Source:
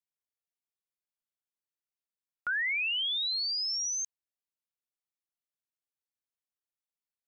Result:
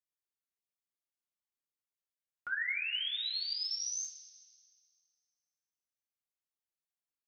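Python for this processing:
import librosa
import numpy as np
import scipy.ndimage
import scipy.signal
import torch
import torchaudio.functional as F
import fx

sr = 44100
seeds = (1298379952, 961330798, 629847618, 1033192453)

y = fx.rev_double_slope(x, sr, seeds[0], early_s=0.26, late_s=2.0, knee_db=-18, drr_db=-1.0)
y = y * 10.0 ** (-8.5 / 20.0)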